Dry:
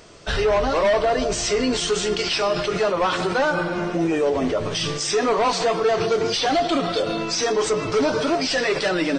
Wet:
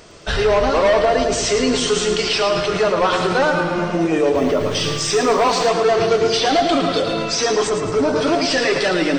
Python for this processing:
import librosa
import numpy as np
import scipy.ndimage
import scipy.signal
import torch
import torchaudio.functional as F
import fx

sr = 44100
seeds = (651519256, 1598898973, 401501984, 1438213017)

y = fx.peak_eq(x, sr, hz=3600.0, db=-8.5, octaves=2.3, at=(7.67, 8.16))
y = fx.echo_feedback(y, sr, ms=110, feedback_pct=52, wet_db=-7.5)
y = fx.dmg_noise_colour(y, sr, seeds[0], colour='blue', level_db=-59.0, at=(4.34, 5.67), fade=0.02)
y = y * librosa.db_to_amplitude(3.0)